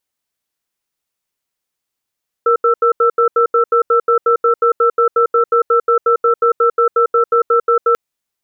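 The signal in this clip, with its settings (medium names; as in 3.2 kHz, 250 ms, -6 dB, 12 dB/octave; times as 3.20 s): cadence 469 Hz, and 1.33 kHz, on 0.10 s, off 0.08 s, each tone -11.5 dBFS 5.49 s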